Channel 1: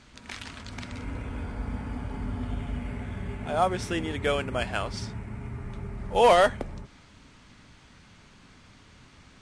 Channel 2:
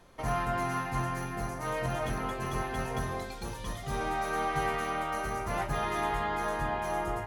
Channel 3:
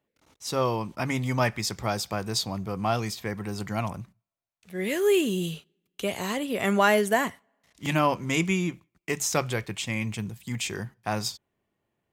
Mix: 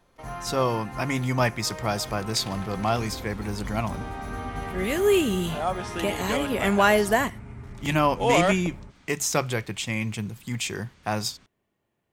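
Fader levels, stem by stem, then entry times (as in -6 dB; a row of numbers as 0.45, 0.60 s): -3.5, -5.5, +1.5 dB; 2.05, 0.00, 0.00 s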